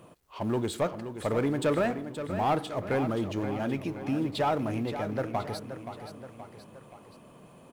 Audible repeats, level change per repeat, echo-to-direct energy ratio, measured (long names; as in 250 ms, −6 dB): 3, −5.5 dB, −8.5 dB